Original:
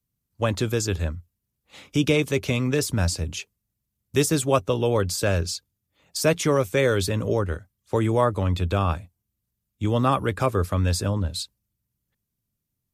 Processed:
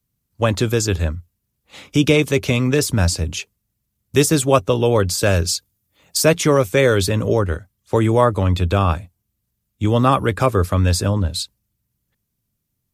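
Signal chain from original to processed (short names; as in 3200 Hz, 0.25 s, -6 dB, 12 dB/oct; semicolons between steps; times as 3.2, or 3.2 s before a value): 5.23–6.22 high shelf 6700 Hz +7.5 dB; gain +6 dB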